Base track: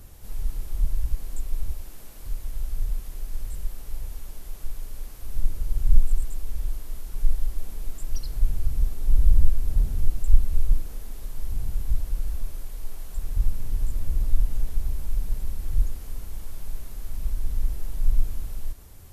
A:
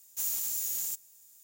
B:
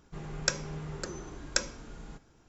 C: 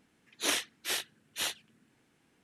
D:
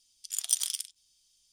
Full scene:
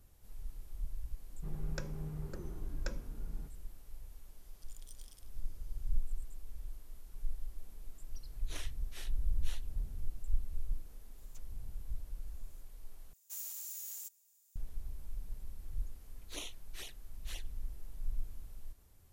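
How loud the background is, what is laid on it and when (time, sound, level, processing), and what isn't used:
base track −16.5 dB
0:01.30: mix in B −12.5 dB + spectral tilt −3.5 dB per octave
0:04.38: mix in D −10.5 dB + downward compressor 2 to 1, threshold −59 dBFS
0:08.07: mix in C −18 dB
0:11.18: mix in A −13 dB + treble cut that deepens with the level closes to 400 Hz, closed at −28.5 dBFS
0:13.13: overwrite with A −11.5 dB + high-pass filter 330 Hz 24 dB per octave
0:15.89: mix in C −12.5 dB + flanger swept by the level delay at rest 7.8 ms, full sweep at −28.5 dBFS

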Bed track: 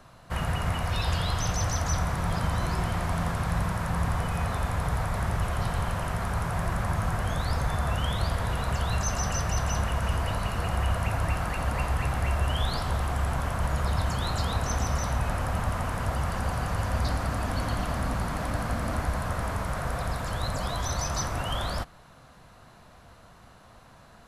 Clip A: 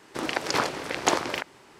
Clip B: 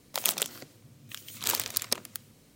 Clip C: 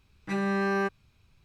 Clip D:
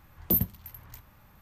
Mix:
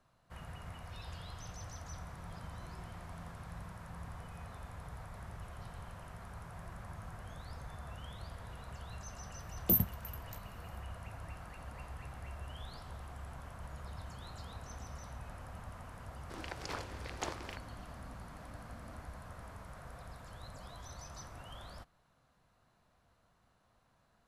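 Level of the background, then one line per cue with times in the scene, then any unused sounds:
bed track −19.5 dB
0:09.39: mix in D −3.5 dB
0:16.15: mix in A −17 dB
not used: B, C

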